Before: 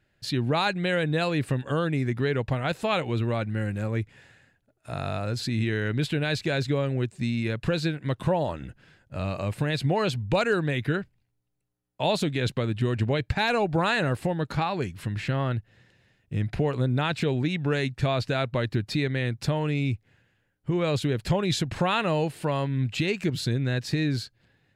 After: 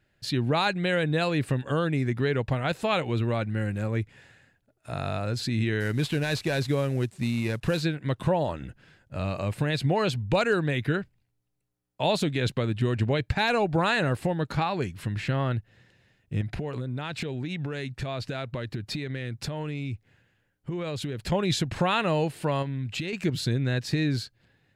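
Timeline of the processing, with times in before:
0:05.80–0:07.82: variable-slope delta modulation 64 kbit/s
0:16.41–0:21.32: downward compressor 12 to 1, threshold −27 dBFS
0:22.62–0:23.13: downward compressor, threshold −27 dBFS

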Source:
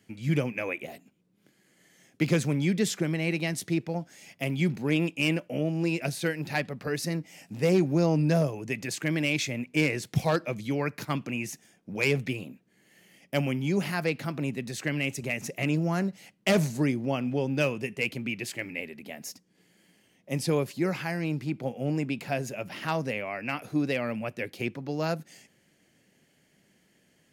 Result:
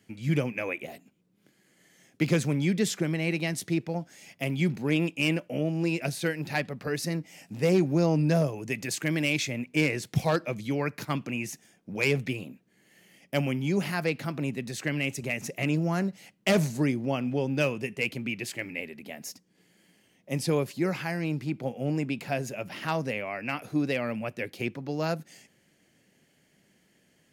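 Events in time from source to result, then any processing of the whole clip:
0:08.57–0:09.38: high-shelf EQ 5,900 Hz +4.5 dB

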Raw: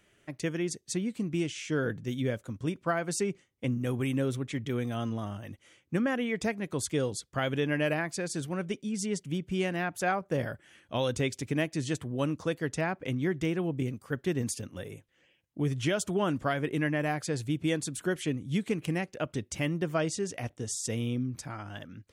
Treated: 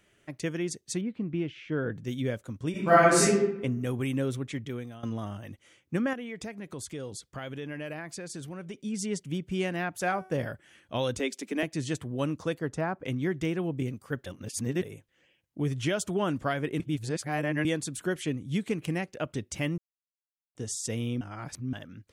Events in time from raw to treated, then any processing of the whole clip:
0:01.01–0:01.96: high-frequency loss of the air 360 metres
0:02.71–0:03.24: thrown reverb, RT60 0.91 s, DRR −11.5 dB
0:04.49–0:05.03: fade out, to −16.5 dB
0:06.13–0:08.82: downward compressor 2.5 to 1, threshold −38 dBFS
0:09.94–0:10.52: hum removal 376.1 Hz, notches 35
0:11.19–0:11.63: Butterworth high-pass 190 Hz 72 dB per octave
0:12.59–0:13.04: high shelf with overshoot 1,700 Hz −6.5 dB, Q 1.5
0:14.26–0:14.82: reverse
0:16.80–0:17.65: reverse
0:19.78–0:20.55: silence
0:21.21–0:21.73: reverse

